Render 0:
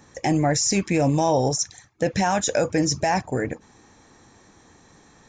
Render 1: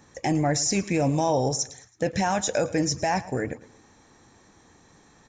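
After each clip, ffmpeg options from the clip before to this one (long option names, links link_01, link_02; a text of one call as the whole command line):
ffmpeg -i in.wav -af "aecho=1:1:109|218|327:0.119|0.0464|0.0181,volume=-3dB" out.wav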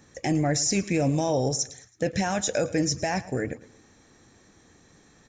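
ffmpeg -i in.wav -af "equalizer=frequency=930:width=2.3:gain=-7.5" out.wav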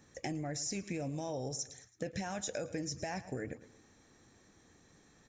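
ffmpeg -i in.wav -af "acompressor=threshold=-28dB:ratio=6,volume=-7dB" out.wav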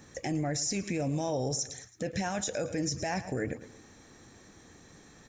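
ffmpeg -i in.wav -af "alimiter=level_in=7.5dB:limit=-24dB:level=0:latency=1:release=35,volume=-7.5dB,volume=9dB" out.wav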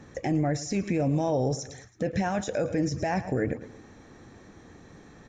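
ffmpeg -i in.wav -af "lowpass=frequency=1600:poles=1,volume=6dB" out.wav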